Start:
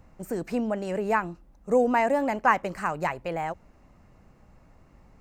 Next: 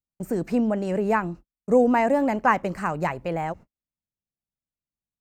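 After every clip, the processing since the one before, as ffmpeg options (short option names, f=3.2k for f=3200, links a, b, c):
-af "agate=range=-48dB:threshold=-43dB:ratio=16:detection=peak,equalizer=f=170:w=0.41:g=6.5"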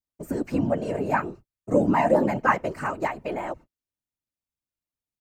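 -af "aecho=1:1:3.3:0.74,afftfilt=real='hypot(re,im)*cos(2*PI*random(0))':imag='hypot(re,im)*sin(2*PI*random(1))':win_size=512:overlap=0.75,volume=3dB"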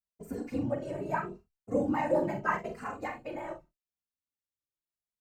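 -filter_complex "[0:a]aecho=1:1:43|68:0.422|0.178,asplit=2[a][b];[b]adelay=2.6,afreqshift=0.79[c];[a][c]amix=inputs=2:normalize=1,volume=-6.5dB"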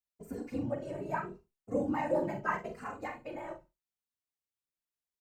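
-af "aecho=1:1:70|140:0.0794|0.0135,volume=-3dB"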